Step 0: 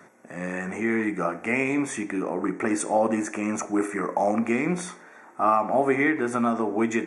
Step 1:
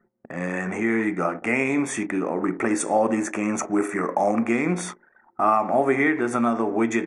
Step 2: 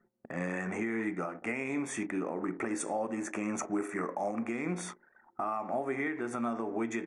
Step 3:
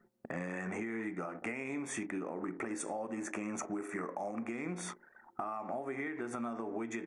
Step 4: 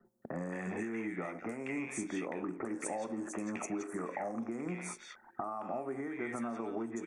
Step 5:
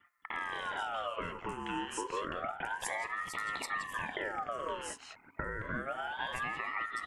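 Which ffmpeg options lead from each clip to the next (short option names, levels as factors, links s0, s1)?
-filter_complex "[0:a]anlmdn=0.398,asplit=2[s0][s1];[s1]acompressor=threshold=0.0282:ratio=6,volume=0.794[s2];[s0][s2]amix=inputs=2:normalize=0"
-af "alimiter=limit=0.119:level=0:latency=1:release=498,volume=0.562"
-af "acompressor=threshold=0.0112:ratio=5,volume=1.41"
-filter_complex "[0:a]acrossover=split=150|1400|4200[s0][s1][s2][s3];[s2]volume=39.8,asoftclip=hard,volume=0.0251[s4];[s0][s1][s4][s3]amix=inputs=4:normalize=0,acrossover=split=1600|5000[s5][s6][s7];[s7]adelay=50[s8];[s6]adelay=220[s9];[s5][s9][s8]amix=inputs=3:normalize=0,volume=1.12"
-af "aeval=exprs='val(0)*sin(2*PI*1100*n/s+1100*0.45/0.29*sin(2*PI*0.29*n/s))':c=same,volume=1.5"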